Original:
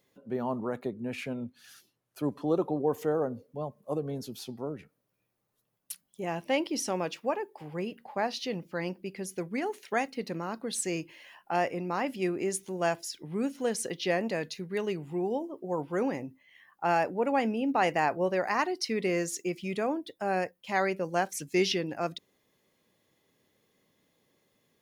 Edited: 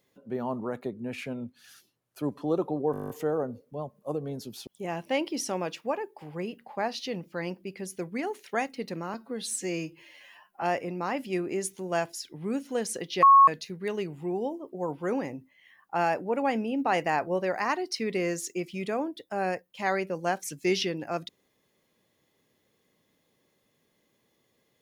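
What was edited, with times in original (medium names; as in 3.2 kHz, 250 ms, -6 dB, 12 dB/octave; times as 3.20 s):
2.92 s: stutter 0.02 s, 10 plays
4.49–6.06 s: delete
10.53–11.52 s: stretch 1.5×
14.12–14.37 s: bleep 1.1 kHz -12 dBFS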